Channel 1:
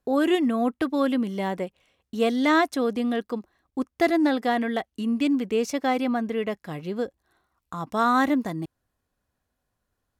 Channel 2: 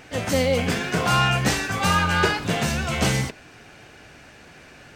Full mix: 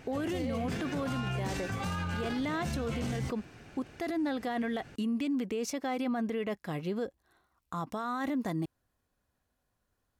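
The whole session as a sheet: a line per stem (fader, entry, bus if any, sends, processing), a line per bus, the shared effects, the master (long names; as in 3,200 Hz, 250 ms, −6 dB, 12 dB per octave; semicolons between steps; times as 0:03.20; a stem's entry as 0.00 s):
−1.0 dB, 0.00 s, no send, no processing
−9.5 dB, 0.00 s, no send, low-shelf EQ 390 Hz +9.5 dB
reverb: not used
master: brickwall limiter −26 dBFS, peak gain reduction 16 dB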